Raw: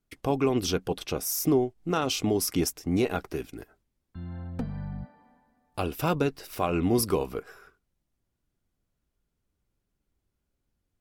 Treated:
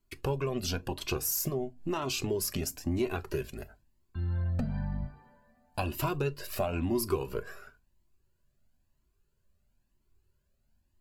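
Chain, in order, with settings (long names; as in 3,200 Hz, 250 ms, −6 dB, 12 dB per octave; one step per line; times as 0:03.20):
downward compressor 5 to 1, threshold −30 dBFS, peak gain reduction 11 dB
EQ curve with evenly spaced ripples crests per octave 1.4, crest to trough 6 dB
on a send at −15 dB: convolution reverb, pre-delay 5 ms
on the sum: flanger whose copies keep moving one way rising 1 Hz
level +6 dB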